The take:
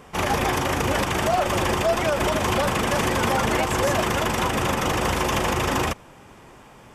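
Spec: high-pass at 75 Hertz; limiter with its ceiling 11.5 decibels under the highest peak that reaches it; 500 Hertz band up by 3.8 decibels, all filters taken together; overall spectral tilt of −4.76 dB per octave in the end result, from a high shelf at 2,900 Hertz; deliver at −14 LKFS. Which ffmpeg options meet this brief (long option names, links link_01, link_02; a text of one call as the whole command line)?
ffmpeg -i in.wav -af "highpass=75,equalizer=frequency=500:width_type=o:gain=5,highshelf=frequency=2900:gain=-3.5,volume=13.5dB,alimiter=limit=-6dB:level=0:latency=1" out.wav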